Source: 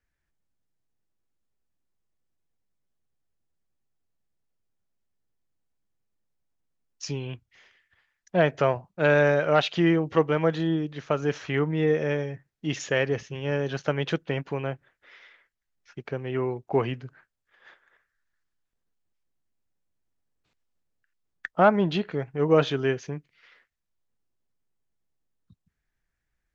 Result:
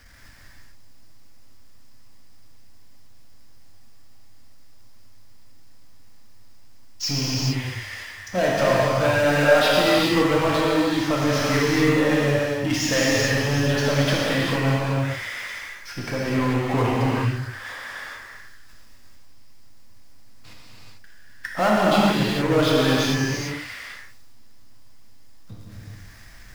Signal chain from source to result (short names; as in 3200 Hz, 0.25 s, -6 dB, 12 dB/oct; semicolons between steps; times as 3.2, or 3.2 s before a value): thirty-one-band EQ 100 Hz +10 dB, 160 Hz -9 dB, 250 Hz +5 dB, 400 Hz -9 dB, 1000 Hz +3 dB, 2000 Hz +3 dB, 5000 Hz +10 dB; power-law curve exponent 0.5; non-linear reverb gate 0.47 s flat, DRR -6 dB; gain -8 dB